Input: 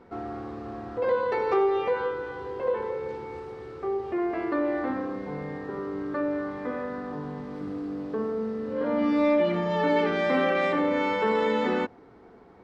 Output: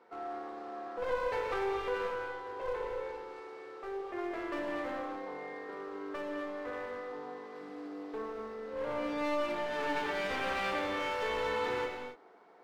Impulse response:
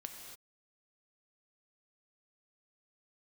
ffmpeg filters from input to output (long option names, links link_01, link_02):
-filter_complex "[0:a]highpass=500,aeval=exprs='clip(val(0),-1,0.02)':channel_layout=same[link_01];[1:a]atrim=start_sample=2205[link_02];[link_01][link_02]afir=irnorm=-1:irlink=0"